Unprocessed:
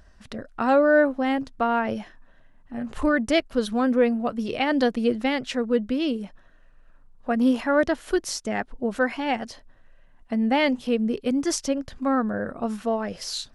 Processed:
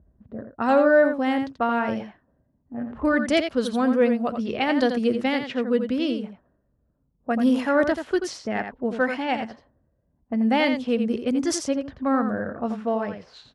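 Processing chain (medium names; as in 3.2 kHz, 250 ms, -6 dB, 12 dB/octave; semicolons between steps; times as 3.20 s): high-pass 52 Hz 24 dB/octave; level-controlled noise filter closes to 340 Hz, open at -20 dBFS; on a send: delay 85 ms -8 dB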